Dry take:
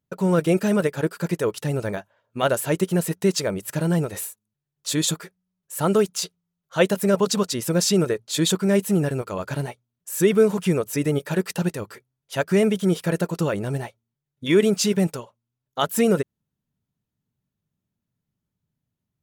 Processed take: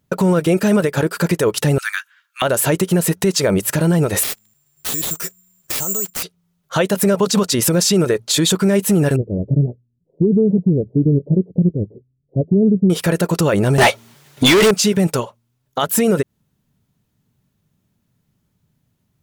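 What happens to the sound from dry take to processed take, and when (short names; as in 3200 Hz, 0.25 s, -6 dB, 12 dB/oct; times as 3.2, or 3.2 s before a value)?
1.78–2.42 steep high-pass 1300 Hz 48 dB/oct
4.23–6.23 careless resampling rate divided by 6×, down none, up zero stuff
9.16–12.9 Gaussian blur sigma 23 samples
13.78–14.71 overdrive pedal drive 37 dB, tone 6600 Hz, clips at -6 dBFS
whole clip: compressor 10:1, threshold -23 dBFS; maximiser +20.5 dB; gain -5.5 dB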